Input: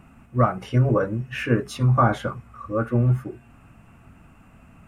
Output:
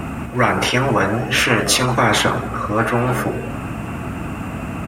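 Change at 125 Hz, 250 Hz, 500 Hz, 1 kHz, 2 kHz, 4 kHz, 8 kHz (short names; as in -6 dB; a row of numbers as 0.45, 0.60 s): -0.5 dB, +5.0 dB, +6.0 dB, +7.5 dB, +14.0 dB, +20.0 dB, n/a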